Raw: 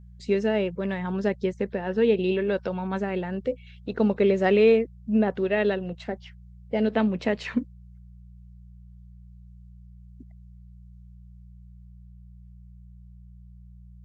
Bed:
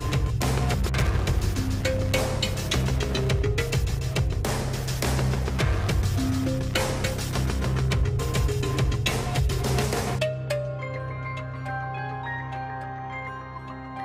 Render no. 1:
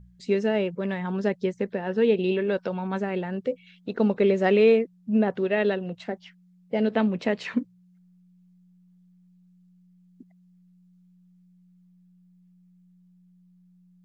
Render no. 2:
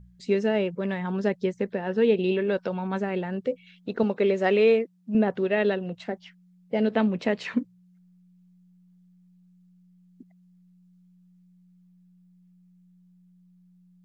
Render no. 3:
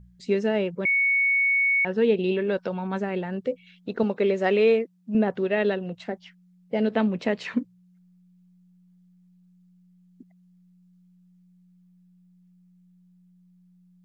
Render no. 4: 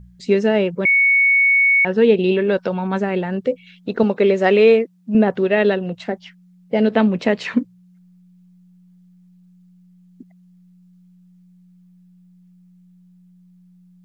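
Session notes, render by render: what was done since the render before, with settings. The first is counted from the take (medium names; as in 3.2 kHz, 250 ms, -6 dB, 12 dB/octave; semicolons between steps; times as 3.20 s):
de-hum 60 Hz, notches 2
4.03–5.15 s: high-pass 270 Hz 6 dB/octave
0.85–1.85 s: bleep 2.22 kHz -18.5 dBFS
trim +7.5 dB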